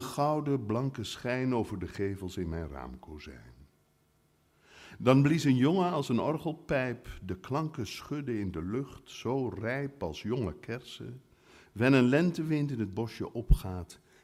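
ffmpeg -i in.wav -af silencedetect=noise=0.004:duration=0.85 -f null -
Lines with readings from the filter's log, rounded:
silence_start: 3.64
silence_end: 4.73 | silence_duration: 1.09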